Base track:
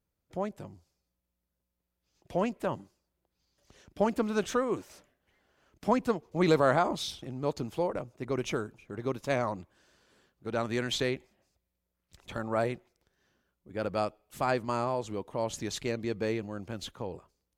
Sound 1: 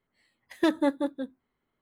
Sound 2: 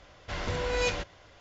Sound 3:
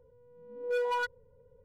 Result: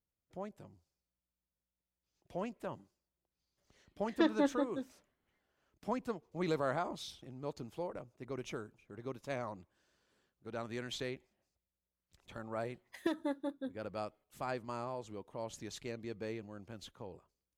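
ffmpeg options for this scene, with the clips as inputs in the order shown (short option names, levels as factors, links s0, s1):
-filter_complex "[1:a]asplit=2[s0][s1];[0:a]volume=0.299[s2];[s0]lowpass=f=5800:w=0.5412,lowpass=f=5800:w=1.3066[s3];[s1]acompressor=threshold=0.0316:ratio=4:attack=43:release=528:knee=1:detection=rms[s4];[s3]atrim=end=1.81,asetpts=PTS-STARTPTS,volume=0.501,afade=t=in:d=0.004:c=hsin,afade=t=out:st=1.806:d=0.004:c=hsin,adelay=157437S[s5];[s4]atrim=end=1.81,asetpts=PTS-STARTPTS,volume=0.631,afade=t=in:d=0.004:c=hsin,afade=t=out:st=1.806:d=0.004:c=hsin,adelay=12430[s6];[s2][s5][s6]amix=inputs=3:normalize=0"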